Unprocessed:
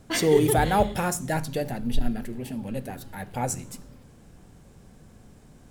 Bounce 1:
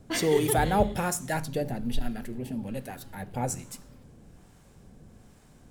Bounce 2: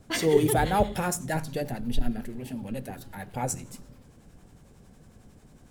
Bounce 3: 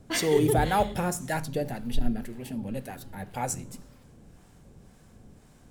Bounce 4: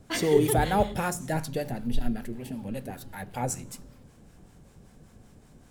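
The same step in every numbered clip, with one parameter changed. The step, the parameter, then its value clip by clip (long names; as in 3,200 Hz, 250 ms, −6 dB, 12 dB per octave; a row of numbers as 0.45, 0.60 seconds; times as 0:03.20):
two-band tremolo in antiphase, speed: 1.2, 11, 1.9, 5.2 Hertz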